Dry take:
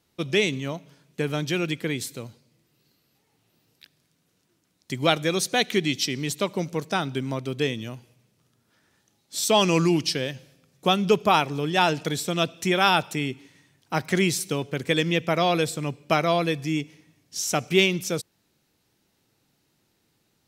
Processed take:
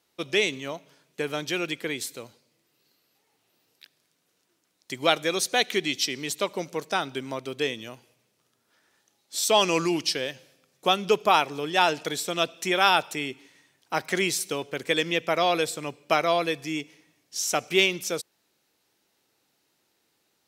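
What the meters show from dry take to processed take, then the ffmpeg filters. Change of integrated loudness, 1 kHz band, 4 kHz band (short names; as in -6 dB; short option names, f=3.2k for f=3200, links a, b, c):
-1.5 dB, 0.0 dB, 0.0 dB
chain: -af "bass=f=250:g=-14,treble=f=4k:g=0"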